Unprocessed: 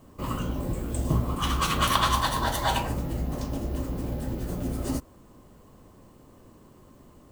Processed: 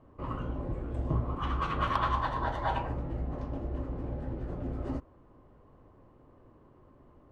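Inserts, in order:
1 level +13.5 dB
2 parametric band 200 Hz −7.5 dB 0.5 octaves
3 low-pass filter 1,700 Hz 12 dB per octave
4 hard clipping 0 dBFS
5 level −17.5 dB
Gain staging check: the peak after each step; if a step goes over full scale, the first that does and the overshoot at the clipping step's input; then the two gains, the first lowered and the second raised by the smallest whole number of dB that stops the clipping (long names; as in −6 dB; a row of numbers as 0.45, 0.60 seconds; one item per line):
+5.5, +5.5, +3.5, 0.0, −17.5 dBFS
step 1, 3.5 dB
step 1 +9.5 dB, step 5 −13.5 dB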